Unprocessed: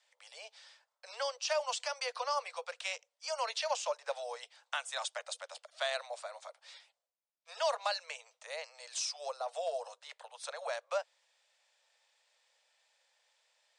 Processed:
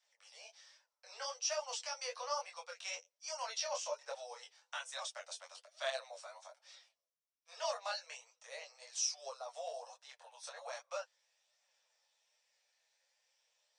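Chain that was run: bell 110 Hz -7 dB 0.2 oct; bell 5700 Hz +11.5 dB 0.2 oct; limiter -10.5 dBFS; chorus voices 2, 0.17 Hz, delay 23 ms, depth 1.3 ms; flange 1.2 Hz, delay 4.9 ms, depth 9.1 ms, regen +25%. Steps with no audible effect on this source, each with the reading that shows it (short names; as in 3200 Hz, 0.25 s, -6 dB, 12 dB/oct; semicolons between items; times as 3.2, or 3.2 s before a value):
bell 110 Hz: input band starts at 400 Hz; limiter -10.5 dBFS: input peak -17.5 dBFS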